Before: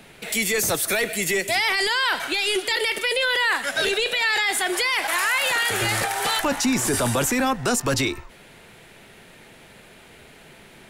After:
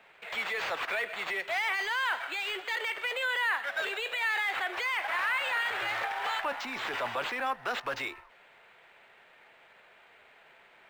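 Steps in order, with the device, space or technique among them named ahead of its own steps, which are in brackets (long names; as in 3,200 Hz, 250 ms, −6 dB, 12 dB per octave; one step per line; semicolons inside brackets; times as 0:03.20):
early companding sampler (sample-rate reduction 11,000 Hz, jitter 0%; log-companded quantiser 6 bits)
three-way crossover with the lows and the highs turned down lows −21 dB, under 550 Hz, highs −20 dB, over 3,200 Hz
level −6 dB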